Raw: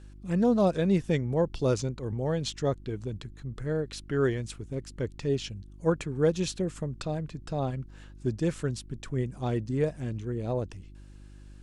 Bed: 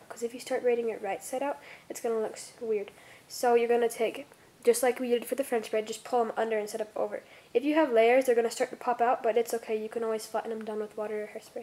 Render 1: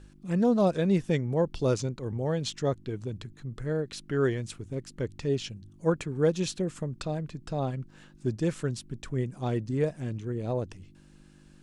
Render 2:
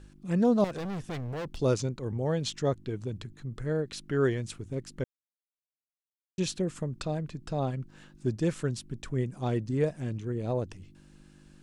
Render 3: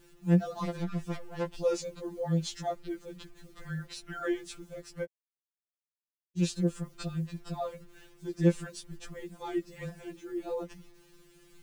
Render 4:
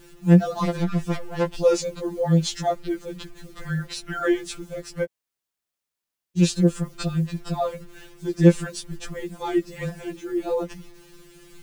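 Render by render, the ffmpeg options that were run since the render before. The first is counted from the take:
ffmpeg -i in.wav -af "bandreject=frequency=50:width_type=h:width=4,bandreject=frequency=100:width_type=h:width=4" out.wav
ffmpeg -i in.wav -filter_complex "[0:a]asettb=1/sr,asplit=3[link_01][link_02][link_03];[link_01]atrim=end=0.644[link_04];[link_02]atrim=start=0.64:end=1.6,asetpts=PTS-STARTPTS,afade=type=in:duration=0.004:curve=qsin,afade=type=out:start_time=0.956:duration=0.004:curve=qsin,volume=33dB,asoftclip=hard,volume=-33dB[link_05];[link_03]atrim=start=1.596[link_06];[link_04][link_05]acrossfade=duration=0.004:curve1=hsin:curve2=qsin[link_07];[link_07][link_06]acrossfade=duration=0.004:curve1=qsin:curve2=hsin,asplit=3[link_08][link_09][link_10];[link_08]atrim=end=5.04,asetpts=PTS-STARTPTS,afade=type=out:start_time=5.036:duration=0.004:curve=hsin[link_11];[link_09]atrim=start=5.04:end=6.38,asetpts=PTS-STARTPTS,volume=0[link_12];[link_10]atrim=start=6.38,asetpts=PTS-STARTPTS,afade=type=in:duration=0.004:curve=hsin[link_13];[link_11][link_12][link_13]concat=n=3:v=0:a=1" out.wav
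ffmpeg -i in.wav -af "acrusher=bits=9:mix=0:aa=0.000001,afftfilt=real='re*2.83*eq(mod(b,8),0)':imag='im*2.83*eq(mod(b,8),0)':win_size=2048:overlap=0.75" out.wav
ffmpeg -i in.wav -af "volume=10dB,alimiter=limit=-3dB:level=0:latency=1" out.wav

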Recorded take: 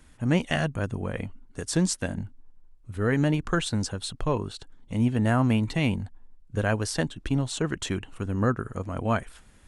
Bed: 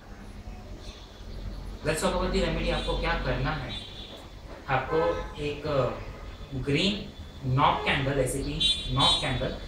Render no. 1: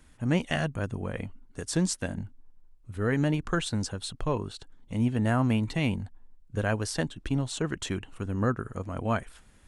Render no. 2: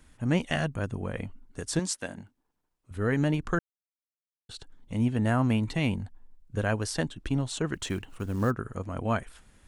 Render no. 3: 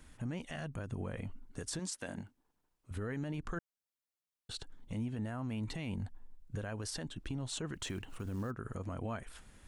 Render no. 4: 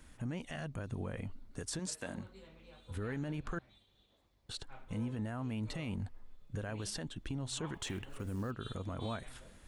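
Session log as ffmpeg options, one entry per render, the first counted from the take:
ffmpeg -i in.wav -af "volume=-2.5dB" out.wav
ffmpeg -i in.wav -filter_complex "[0:a]asettb=1/sr,asplit=3[link_01][link_02][link_03];[link_01]atrim=end=1.794[link_04];[link_02]atrim=start=1.79:end=2.91,asetpts=PTS-STARTPTS,afade=type=in:duration=0.004:curve=qsin,afade=type=out:start_time=1.116:duration=0.004:curve=qsin,highpass=frequency=420:poles=1[link_05];[link_03]atrim=start=2.906[link_06];[link_04][link_05]acrossfade=duration=0.004:curve1=hsin:curve2=qsin[link_07];[link_07][link_06]acrossfade=duration=0.004:curve1=qsin:curve2=hsin,asettb=1/sr,asplit=3[link_08][link_09][link_10];[link_08]atrim=end=7.744[link_11];[link_09]atrim=start=7.74:end=8.51,asetpts=PTS-STARTPTS,afade=type=in:duration=0.004:curve=qsin,afade=type=out:start_time=0.766:duration=0.004:curve=qsin,acrusher=bits=7:mode=log:mix=0:aa=0.000001[link_12];[link_10]atrim=start=8.506[link_13];[link_11][link_12]acrossfade=duration=0.004:curve1=hsin:curve2=qsin[link_14];[link_14][link_13]acrossfade=duration=0.004:curve1=qsin:curve2=hsin,asplit=3[link_15][link_16][link_17];[link_15]atrim=end=3.59,asetpts=PTS-STARTPTS,afade=type=out:start_time=3.586:duration=0.004:curve=hsin[link_18];[link_16]atrim=start=3.59:end=4.49,asetpts=PTS-STARTPTS,volume=0[link_19];[link_17]atrim=start=4.49,asetpts=PTS-STARTPTS,afade=type=in:duration=0.004:curve=hsin[link_20];[link_18][link_19][link_20]concat=n=3:v=0:a=1" out.wav
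ffmpeg -i in.wav -af "acompressor=threshold=-31dB:ratio=6,alimiter=level_in=6dB:limit=-24dB:level=0:latency=1:release=41,volume=-6dB" out.wav
ffmpeg -i in.wav -i bed.wav -filter_complex "[1:a]volume=-29.5dB[link_01];[0:a][link_01]amix=inputs=2:normalize=0" out.wav

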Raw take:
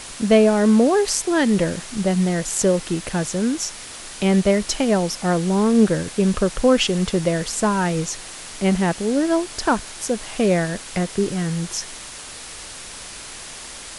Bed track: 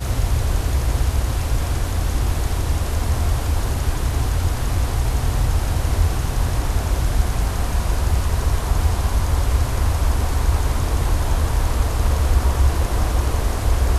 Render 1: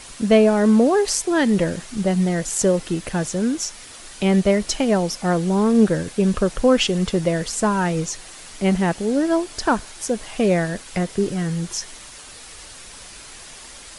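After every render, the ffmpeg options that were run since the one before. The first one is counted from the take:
ffmpeg -i in.wav -af "afftdn=noise_reduction=6:noise_floor=-37" out.wav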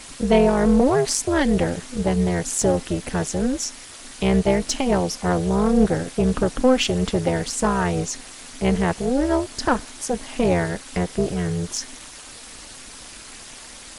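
ffmpeg -i in.wav -filter_complex "[0:a]tremolo=f=260:d=0.857,asplit=2[link_01][link_02];[link_02]asoftclip=type=tanh:threshold=-19.5dB,volume=-5.5dB[link_03];[link_01][link_03]amix=inputs=2:normalize=0" out.wav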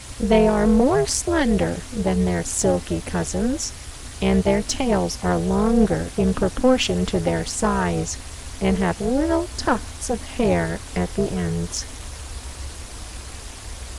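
ffmpeg -i in.wav -i bed.wav -filter_complex "[1:a]volume=-18dB[link_01];[0:a][link_01]amix=inputs=2:normalize=0" out.wav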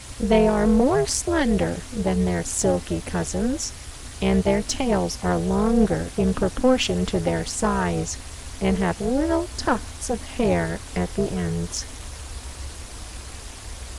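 ffmpeg -i in.wav -af "volume=-1.5dB" out.wav

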